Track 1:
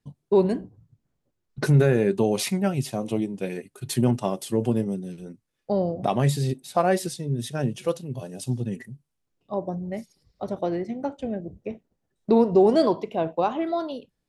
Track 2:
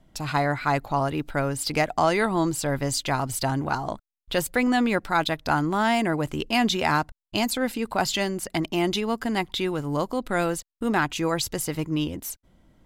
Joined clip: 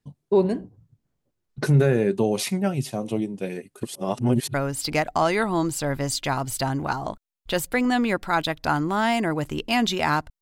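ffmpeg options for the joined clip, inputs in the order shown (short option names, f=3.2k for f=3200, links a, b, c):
-filter_complex "[0:a]apad=whole_dur=10.41,atrim=end=10.41,asplit=2[a][b];[a]atrim=end=3.832[c];[b]atrim=start=3.828:end=4.542,asetpts=PTS-STARTPTS,areverse[d];[1:a]atrim=start=1.358:end=7.23[e];[c][d]acrossfade=d=0.004:c1=hsin:c2=hsin[f];[f][e]acrossfade=d=0.004:c1=hsin:c2=hsin"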